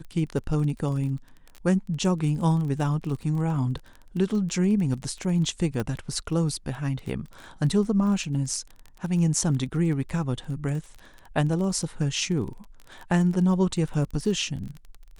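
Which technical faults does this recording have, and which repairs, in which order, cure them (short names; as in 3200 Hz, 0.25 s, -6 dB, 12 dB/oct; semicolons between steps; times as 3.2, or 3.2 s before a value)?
crackle 24/s -33 dBFS
5.8 pop -16 dBFS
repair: de-click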